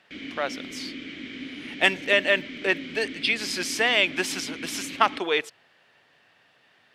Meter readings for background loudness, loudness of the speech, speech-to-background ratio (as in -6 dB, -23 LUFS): -37.5 LUFS, -24.5 LUFS, 13.0 dB